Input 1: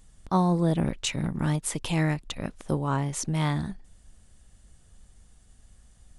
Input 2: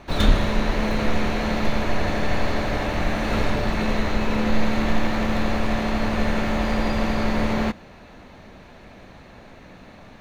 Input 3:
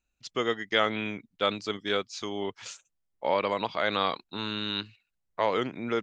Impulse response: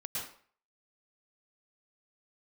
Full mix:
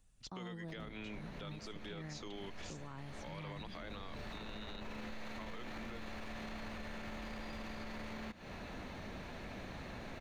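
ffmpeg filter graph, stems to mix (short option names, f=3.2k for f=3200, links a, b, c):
-filter_complex "[0:a]acrossover=split=4400[a][b];[b]acompressor=threshold=-58dB:ratio=4:attack=1:release=60[c];[a][c]amix=inputs=2:normalize=0,volume=-15dB,asplit=2[d][e];[1:a]acompressor=threshold=-30dB:ratio=5,adelay=600,volume=-0.5dB[f];[2:a]acompressor=threshold=-30dB:ratio=6,volume=-4dB[g];[e]apad=whole_len=476521[h];[f][h]sidechaincompress=threshold=-53dB:ratio=4:attack=16:release=817[i];[d][i][g]amix=inputs=3:normalize=0,acrossover=split=370|1300[j][k][l];[j]acompressor=threshold=-44dB:ratio=4[m];[k]acompressor=threshold=-52dB:ratio=4[n];[l]acompressor=threshold=-49dB:ratio=4[o];[m][n][o]amix=inputs=3:normalize=0,alimiter=level_in=13dB:limit=-24dB:level=0:latency=1:release=12,volume=-13dB"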